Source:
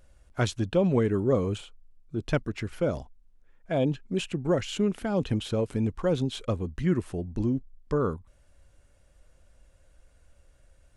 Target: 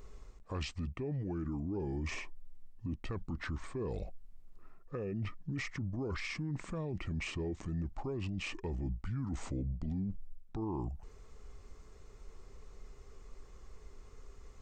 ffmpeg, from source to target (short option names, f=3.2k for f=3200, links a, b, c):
-af "areverse,acompressor=threshold=-33dB:ratio=6,areverse,asetrate=33075,aresample=44100,equalizer=f=4.8k:w=0.53:g=-5,bandreject=f=1.6k:w=20,alimiter=level_in=14dB:limit=-24dB:level=0:latency=1:release=46,volume=-14dB,volume=7.5dB"